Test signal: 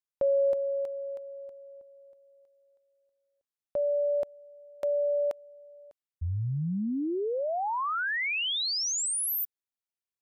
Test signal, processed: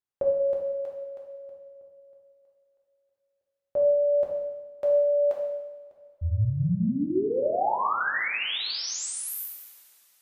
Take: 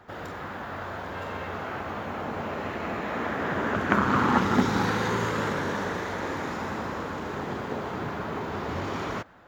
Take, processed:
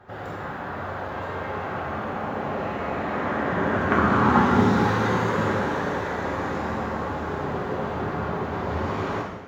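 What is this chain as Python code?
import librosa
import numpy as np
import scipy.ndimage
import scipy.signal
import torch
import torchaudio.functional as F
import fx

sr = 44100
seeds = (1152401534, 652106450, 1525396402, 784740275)

y = fx.high_shelf(x, sr, hz=2600.0, db=-9.5)
y = fx.rev_double_slope(y, sr, seeds[0], early_s=1.0, late_s=3.3, knee_db=-20, drr_db=-3.5)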